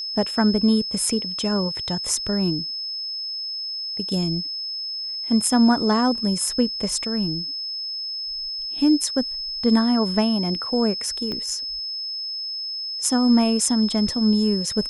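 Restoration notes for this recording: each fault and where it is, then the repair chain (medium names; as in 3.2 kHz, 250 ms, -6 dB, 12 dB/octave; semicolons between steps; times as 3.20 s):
whine 5.2 kHz -27 dBFS
11.32 s: pop -18 dBFS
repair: de-click; band-stop 5.2 kHz, Q 30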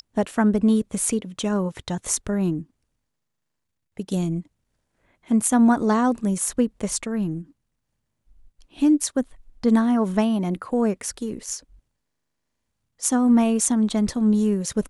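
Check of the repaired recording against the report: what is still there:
11.32 s: pop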